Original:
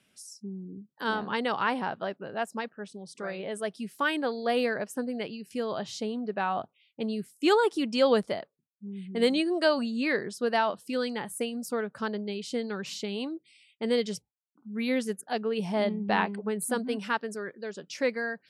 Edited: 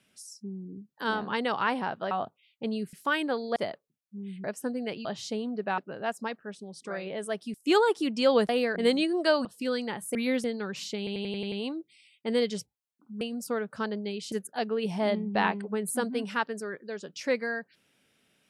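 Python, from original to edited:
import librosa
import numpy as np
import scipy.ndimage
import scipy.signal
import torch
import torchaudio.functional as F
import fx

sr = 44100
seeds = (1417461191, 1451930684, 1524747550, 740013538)

y = fx.edit(x, sr, fx.swap(start_s=2.11, length_s=1.76, other_s=6.48, other_length_s=0.82),
    fx.swap(start_s=4.5, length_s=0.27, other_s=8.25, other_length_s=0.88),
    fx.cut(start_s=5.38, length_s=0.37),
    fx.cut(start_s=9.82, length_s=0.91),
    fx.swap(start_s=11.43, length_s=1.11, other_s=14.77, other_length_s=0.29),
    fx.stutter(start_s=13.08, slice_s=0.09, count=7), tone=tone)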